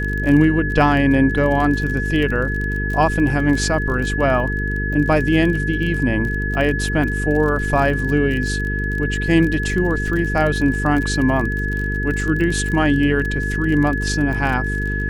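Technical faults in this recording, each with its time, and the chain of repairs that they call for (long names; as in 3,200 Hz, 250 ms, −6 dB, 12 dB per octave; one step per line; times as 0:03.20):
mains buzz 50 Hz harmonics 9 −23 dBFS
surface crackle 32 per second −24 dBFS
whistle 1,700 Hz −24 dBFS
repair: click removal
notch filter 1,700 Hz, Q 30
hum removal 50 Hz, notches 9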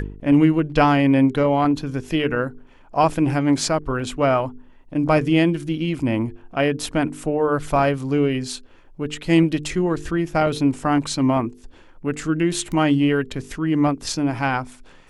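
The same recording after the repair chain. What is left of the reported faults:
none of them is left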